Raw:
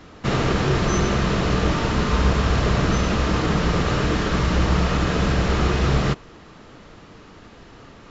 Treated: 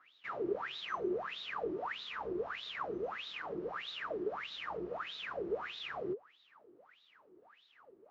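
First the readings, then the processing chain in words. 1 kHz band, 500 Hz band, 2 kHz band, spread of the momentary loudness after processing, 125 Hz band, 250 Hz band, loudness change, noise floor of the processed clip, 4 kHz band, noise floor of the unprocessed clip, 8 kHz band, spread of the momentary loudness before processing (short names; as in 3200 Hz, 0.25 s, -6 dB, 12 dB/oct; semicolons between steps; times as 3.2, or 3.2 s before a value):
-16.5 dB, -13.5 dB, -16.0 dB, 4 LU, -38.5 dB, -22.0 dB, -19.0 dB, -68 dBFS, -14.5 dB, -45 dBFS, n/a, 2 LU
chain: wah 1.6 Hz 350–3800 Hz, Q 18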